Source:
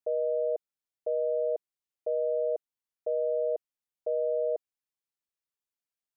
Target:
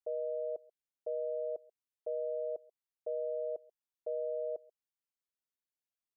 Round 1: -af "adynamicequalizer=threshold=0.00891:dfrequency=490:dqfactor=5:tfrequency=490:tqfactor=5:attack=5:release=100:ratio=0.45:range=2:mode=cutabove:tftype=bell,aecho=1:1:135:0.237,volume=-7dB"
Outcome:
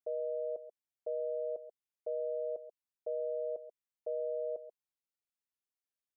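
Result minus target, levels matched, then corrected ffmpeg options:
echo-to-direct +11 dB
-af "adynamicequalizer=threshold=0.00891:dfrequency=490:dqfactor=5:tfrequency=490:tqfactor=5:attack=5:release=100:ratio=0.45:range=2:mode=cutabove:tftype=bell,aecho=1:1:135:0.0668,volume=-7dB"

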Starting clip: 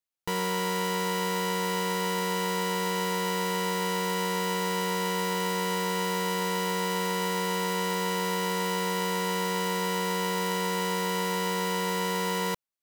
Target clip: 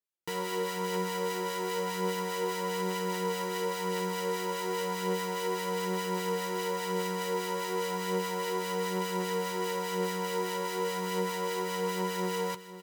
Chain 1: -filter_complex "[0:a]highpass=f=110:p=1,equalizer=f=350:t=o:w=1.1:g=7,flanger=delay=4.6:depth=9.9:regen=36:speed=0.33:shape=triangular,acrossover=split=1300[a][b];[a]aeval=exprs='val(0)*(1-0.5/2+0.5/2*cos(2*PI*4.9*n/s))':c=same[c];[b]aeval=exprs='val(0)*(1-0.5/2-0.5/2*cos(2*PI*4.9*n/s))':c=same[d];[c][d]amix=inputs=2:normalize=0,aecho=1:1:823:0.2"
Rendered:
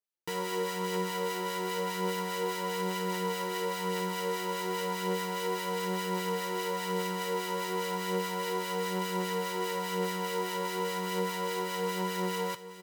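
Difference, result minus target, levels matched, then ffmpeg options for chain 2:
echo 0.319 s late
-filter_complex "[0:a]highpass=f=110:p=1,equalizer=f=350:t=o:w=1.1:g=7,flanger=delay=4.6:depth=9.9:regen=36:speed=0.33:shape=triangular,acrossover=split=1300[a][b];[a]aeval=exprs='val(0)*(1-0.5/2+0.5/2*cos(2*PI*4.9*n/s))':c=same[c];[b]aeval=exprs='val(0)*(1-0.5/2-0.5/2*cos(2*PI*4.9*n/s))':c=same[d];[c][d]amix=inputs=2:normalize=0,aecho=1:1:504:0.2"

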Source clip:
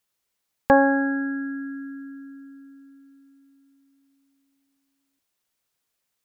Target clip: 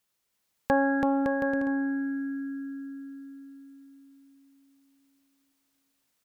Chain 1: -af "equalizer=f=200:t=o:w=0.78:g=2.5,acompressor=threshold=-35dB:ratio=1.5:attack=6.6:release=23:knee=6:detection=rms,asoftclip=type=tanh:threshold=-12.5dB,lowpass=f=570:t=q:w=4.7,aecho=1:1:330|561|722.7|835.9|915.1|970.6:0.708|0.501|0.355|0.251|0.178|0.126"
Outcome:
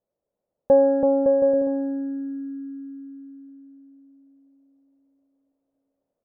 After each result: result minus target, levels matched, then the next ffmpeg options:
soft clip: distortion +19 dB; 500 Hz band +5.5 dB
-af "equalizer=f=200:t=o:w=0.78:g=2.5,acompressor=threshold=-35dB:ratio=1.5:attack=6.6:release=23:knee=6:detection=rms,asoftclip=type=tanh:threshold=-2dB,lowpass=f=570:t=q:w=4.7,aecho=1:1:330|561|722.7|835.9|915.1|970.6:0.708|0.501|0.355|0.251|0.178|0.126"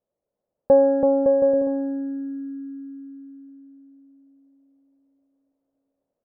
500 Hz band +5.5 dB
-af "equalizer=f=200:t=o:w=0.78:g=2.5,acompressor=threshold=-35dB:ratio=1.5:attack=6.6:release=23:knee=6:detection=rms,asoftclip=type=tanh:threshold=-2dB,aecho=1:1:330|561|722.7|835.9|915.1|970.6:0.708|0.501|0.355|0.251|0.178|0.126"

